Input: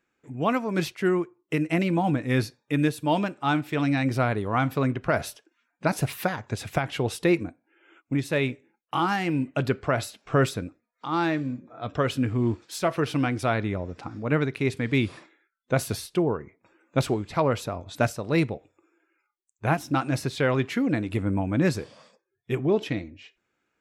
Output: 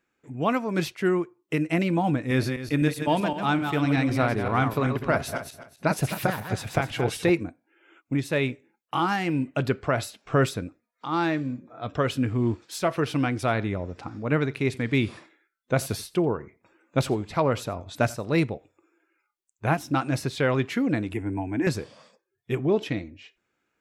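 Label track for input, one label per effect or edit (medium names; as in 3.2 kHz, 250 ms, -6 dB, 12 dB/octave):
2.180000	7.300000	backward echo that repeats 128 ms, feedback 44%, level -6 dB
13.340000	18.400000	delay 88 ms -22 dB
21.130000	21.670000	static phaser centre 820 Hz, stages 8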